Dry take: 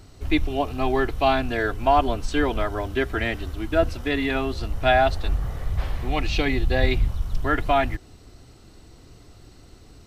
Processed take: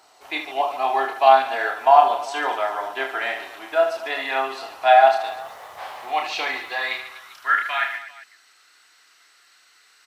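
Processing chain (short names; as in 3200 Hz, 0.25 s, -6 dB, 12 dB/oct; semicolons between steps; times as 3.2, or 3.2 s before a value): reverse bouncing-ball echo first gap 30 ms, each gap 1.5×, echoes 5; 5.24–7.01 requantised 10-bit, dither none; high-pass sweep 800 Hz -> 1600 Hz, 6.31–7.7; gain -1.5 dB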